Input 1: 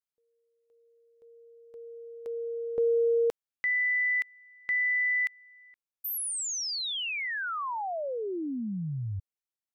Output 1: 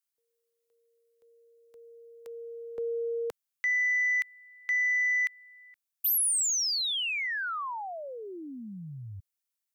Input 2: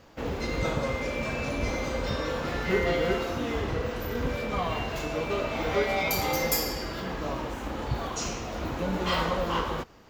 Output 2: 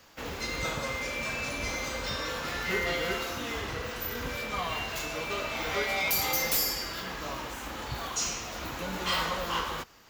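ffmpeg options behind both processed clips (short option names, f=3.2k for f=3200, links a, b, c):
-filter_complex "[0:a]highshelf=f=6k:g=9,acrossover=split=130|970[a][b][c];[c]aeval=exprs='0.188*sin(PI/2*1.78*val(0)/0.188)':c=same[d];[a][b][d]amix=inputs=3:normalize=0,volume=-8dB"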